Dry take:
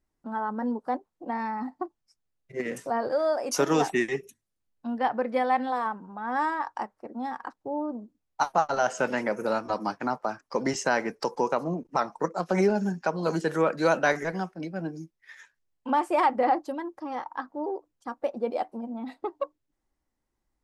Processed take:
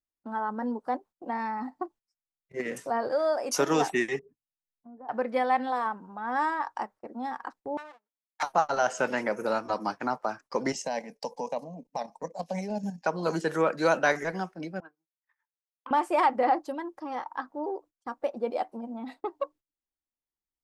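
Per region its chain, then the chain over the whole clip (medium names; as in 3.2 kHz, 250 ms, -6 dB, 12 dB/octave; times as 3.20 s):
4.19–5.09 s: Gaussian low-pass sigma 8.4 samples + comb 6.9 ms, depth 41% + compression 2.5:1, threshold -49 dBFS
7.77–8.43 s: comb filter that takes the minimum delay 9.7 ms + high-pass 1.2 kHz + treble shelf 11 kHz -11 dB
10.72–13.06 s: level held to a coarse grid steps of 9 dB + static phaser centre 360 Hz, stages 6
14.80–15.91 s: transient shaper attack +10 dB, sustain -8 dB + auto-wah 650–1300 Hz, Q 4.8, up, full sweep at -33.5 dBFS + transformer saturation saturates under 790 Hz
whole clip: gate -48 dBFS, range -18 dB; bass shelf 320 Hz -4 dB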